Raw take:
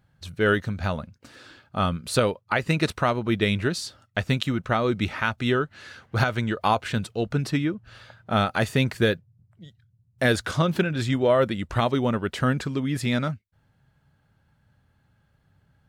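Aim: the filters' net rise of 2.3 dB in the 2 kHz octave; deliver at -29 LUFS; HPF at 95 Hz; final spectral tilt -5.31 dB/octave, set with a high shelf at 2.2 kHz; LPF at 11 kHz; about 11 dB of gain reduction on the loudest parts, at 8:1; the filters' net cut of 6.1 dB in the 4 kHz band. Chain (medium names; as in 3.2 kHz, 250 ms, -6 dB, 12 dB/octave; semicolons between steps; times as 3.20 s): high-pass 95 Hz; low-pass 11 kHz; peaking EQ 2 kHz +8 dB; treble shelf 2.2 kHz -8 dB; peaking EQ 4 kHz -3.5 dB; compression 8:1, threshold -27 dBFS; trim +4 dB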